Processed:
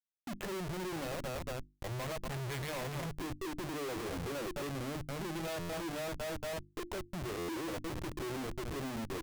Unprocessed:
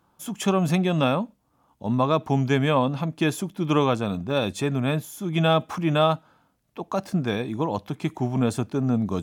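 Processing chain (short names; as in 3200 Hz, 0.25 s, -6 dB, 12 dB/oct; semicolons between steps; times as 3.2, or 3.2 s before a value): Wiener smoothing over 41 samples; 1.11–3.21 bell 310 Hz -14.5 dB 1.7 oct; feedback echo 0.231 s, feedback 30%, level -15 dB; compressor 4:1, threshold -39 dBFS, peak gain reduction 19.5 dB; speaker cabinet 190–5200 Hz, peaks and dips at 210 Hz +6 dB, 360 Hz +10 dB, 830 Hz -7 dB, 1200 Hz -6 dB, 2000 Hz +8 dB, 4800 Hz -10 dB; low-pass opened by the level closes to 2200 Hz, open at -37 dBFS; spectral noise reduction 28 dB; Schmitt trigger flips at -52 dBFS; notches 50/100/150/200/250/300/350 Hz; stuck buffer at 5.59/7.38, samples 512, times 8; gain +3 dB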